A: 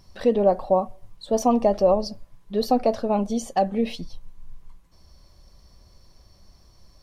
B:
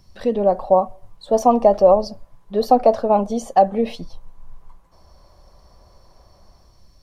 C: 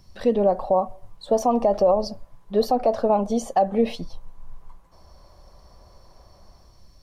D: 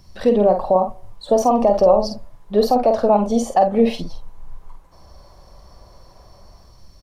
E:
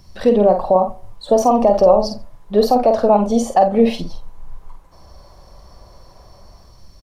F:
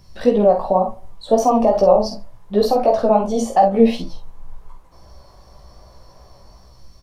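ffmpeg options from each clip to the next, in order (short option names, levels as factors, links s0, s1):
-filter_complex "[0:a]bass=f=250:g=3,treble=f=4000:g=1,acrossover=split=510|1200[s0][s1][s2];[s1]dynaudnorm=f=160:g=7:m=5.62[s3];[s0][s3][s2]amix=inputs=3:normalize=0,volume=0.841"
-af "alimiter=limit=0.316:level=0:latency=1:release=127"
-filter_complex "[0:a]asplit=2[s0][s1];[s1]adelay=48,volume=0.473[s2];[s0][s2]amix=inputs=2:normalize=0,volume=1.58"
-filter_complex "[0:a]asplit=2[s0][s1];[s1]adelay=87.46,volume=0.0631,highshelf=f=4000:g=-1.97[s2];[s0][s2]amix=inputs=2:normalize=0,volume=1.26"
-af "flanger=delay=15:depth=3.2:speed=2.7,volume=1.19"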